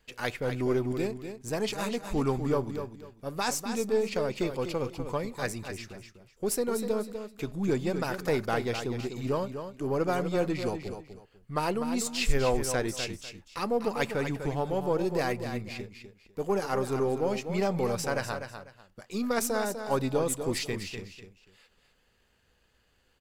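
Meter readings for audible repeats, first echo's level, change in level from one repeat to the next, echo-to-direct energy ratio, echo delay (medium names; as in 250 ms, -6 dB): 2, -8.5 dB, -12.0 dB, -8.0 dB, 248 ms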